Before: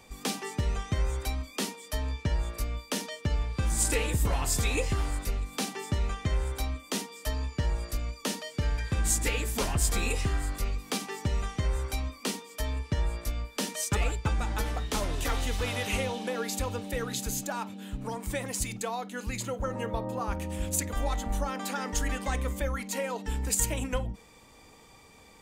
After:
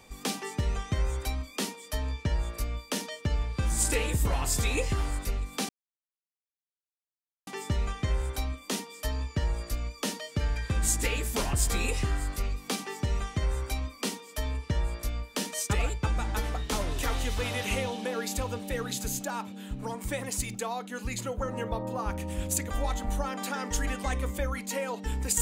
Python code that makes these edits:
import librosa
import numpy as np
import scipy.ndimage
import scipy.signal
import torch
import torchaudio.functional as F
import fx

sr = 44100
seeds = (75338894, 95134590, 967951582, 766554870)

y = fx.edit(x, sr, fx.insert_silence(at_s=5.69, length_s=1.78), tone=tone)